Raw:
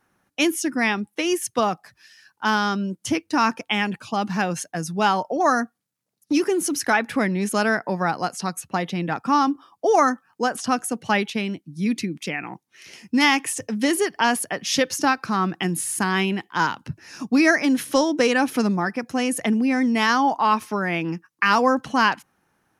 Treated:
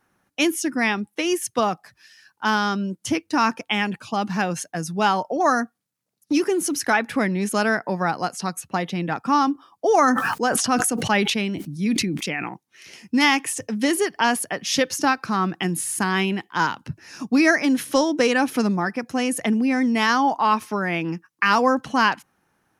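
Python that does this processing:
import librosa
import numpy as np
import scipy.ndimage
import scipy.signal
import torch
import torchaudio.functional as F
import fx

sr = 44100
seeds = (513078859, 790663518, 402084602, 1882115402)

y = fx.sustainer(x, sr, db_per_s=29.0, at=(9.9, 12.49))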